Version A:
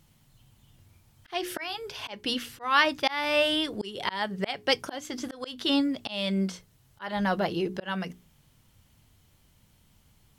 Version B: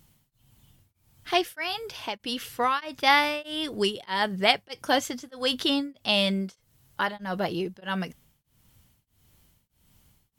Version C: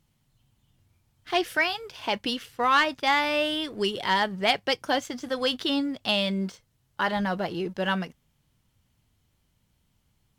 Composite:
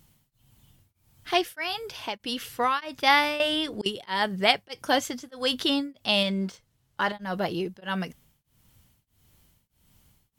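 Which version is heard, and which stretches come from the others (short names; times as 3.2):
B
3.4–3.86 from A
6.23–7.12 from C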